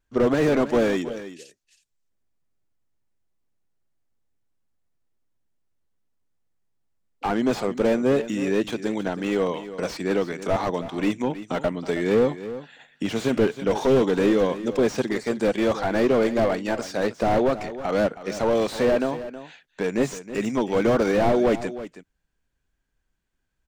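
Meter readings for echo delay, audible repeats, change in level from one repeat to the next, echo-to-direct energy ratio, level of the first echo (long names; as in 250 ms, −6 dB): 320 ms, 1, repeats not evenly spaced, −13.5 dB, −13.5 dB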